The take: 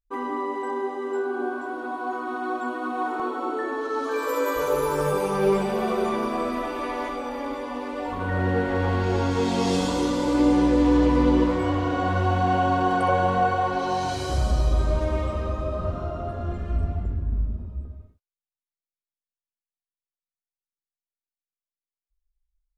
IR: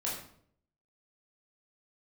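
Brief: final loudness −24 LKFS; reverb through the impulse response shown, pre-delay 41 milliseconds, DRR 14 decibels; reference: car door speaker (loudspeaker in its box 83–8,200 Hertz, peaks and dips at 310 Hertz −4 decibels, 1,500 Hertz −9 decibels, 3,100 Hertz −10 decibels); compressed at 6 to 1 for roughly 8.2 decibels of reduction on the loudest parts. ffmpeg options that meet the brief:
-filter_complex "[0:a]acompressor=threshold=-24dB:ratio=6,asplit=2[link_01][link_02];[1:a]atrim=start_sample=2205,adelay=41[link_03];[link_02][link_03]afir=irnorm=-1:irlink=0,volume=-18dB[link_04];[link_01][link_04]amix=inputs=2:normalize=0,highpass=83,equalizer=frequency=310:width_type=q:width=4:gain=-4,equalizer=frequency=1500:width_type=q:width=4:gain=-9,equalizer=frequency=3100:width_type=q:width=4:gain=-10,lowpass=frequency=8200:width=0.5412,lowpass=frequency=8200:width=1.3066,volume=6.5dB"

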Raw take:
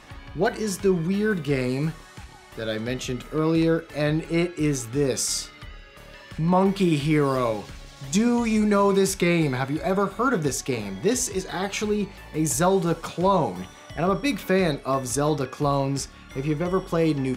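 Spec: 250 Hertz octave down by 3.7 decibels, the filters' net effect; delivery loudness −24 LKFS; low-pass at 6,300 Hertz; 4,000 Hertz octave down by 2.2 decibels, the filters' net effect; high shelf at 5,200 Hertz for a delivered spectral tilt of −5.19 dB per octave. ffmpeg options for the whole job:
ffmpeg -i in.wav -af "lowpass=6300,equalizer=frequency=250:width_type=o:gain=-5.5,equalizer=frequency=4000:width_type=o:gain=-3.5,highshelf=frequency=5200:gain=3.5,volume=2dB" out.wav

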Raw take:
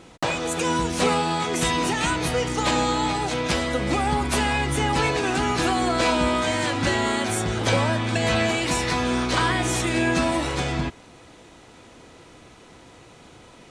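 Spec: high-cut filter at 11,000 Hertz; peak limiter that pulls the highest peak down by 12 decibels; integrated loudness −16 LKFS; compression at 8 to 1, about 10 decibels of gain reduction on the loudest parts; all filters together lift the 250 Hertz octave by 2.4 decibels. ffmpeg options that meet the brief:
ffmpeg -i in.wav -af "lowpass=11000,equalizer=frequency=250:width_type=o:gain=3,acompressor=threshold=-27dB:ratio=8,volume=17dB,alimiter=limit=-7dB:level=0:latency=1" out.wav

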